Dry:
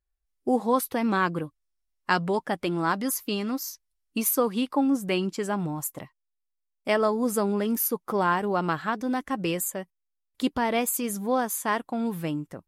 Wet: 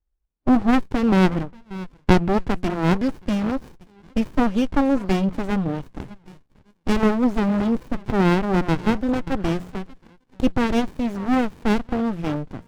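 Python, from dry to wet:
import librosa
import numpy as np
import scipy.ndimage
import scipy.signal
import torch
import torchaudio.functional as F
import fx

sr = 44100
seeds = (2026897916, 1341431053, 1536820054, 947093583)

y = fx.air_absorb(x, sr, metres=140.0)
y = fx.hum_notches(y, sr, base_hz=60, count=3)
y = fx.echo_stepped(y, sr, ms=583, hz=1100.0, octaves=1.4, feedback_pct=70, wet_db=-12)
y = fx.running_max(y, sr, window=65)
y = y * librosa.db_to_amplitude(8.0)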